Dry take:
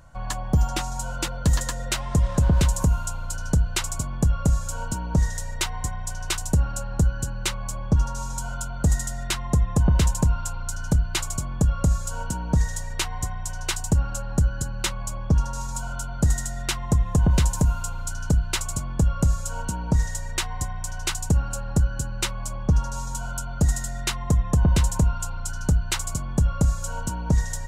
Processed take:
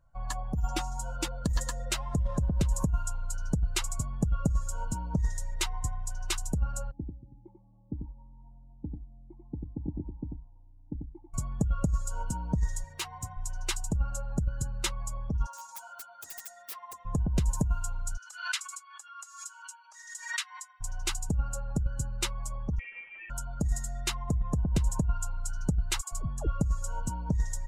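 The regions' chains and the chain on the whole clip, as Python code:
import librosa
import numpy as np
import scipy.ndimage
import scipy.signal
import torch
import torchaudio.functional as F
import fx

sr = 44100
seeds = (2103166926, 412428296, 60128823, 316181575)

y = fx.chain(x, sr, fx.formant_cascade(vowel='u'),
    fx.echo_single(ms=92, db=-3.5),
    fx.doppler_dist(depth_ms=0.1), at=(6.91, 11.34))
y = fx.chain(y, sr, fx.highpass(hz=79.0, slope=12),
    fx.clip_hard(threshold_db=-22.5), at=(12.84, 13.37))
y = fx.chain(y, sr, fx.highpass(hz=690.0, slope=12),
    fx.overflow_wrap(gain_db=27.0), at=(15.46, 17.05))
y = fx.chain(y, sr, fx.highpass(hz=1200.0, slope=24),
    fx.high_shelf(hz=12000.0, db=-8.5),
    fx.pre_swell(db_per_s=67.0), at=(18.17, 20.81))
y = fx.chain(y, sr, fx.cvsd(bps=32000),
    fx.highpass(hz=480.0, slope=12),
    fx.freq_invert(carrier_hz=3300), at=(22.79, 23.3))
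y = fx.chain(y, sr, fx.notch(hz=2100.0, q=7.8),
    fx.dispersion(late='lows', ms=108.0, hz=530.0), at=(26.01, 26.47))
y = fx.bin_expand(y, sr, power=1.5)
y = fx.low_shelf(y, sr, hz=240.0, db=7.0)
y = fx.over_compress(y, sr, threshold_db=-16.0, ratio=-0.5)
y = y * 10.0 ** (-7.0 / 20.0)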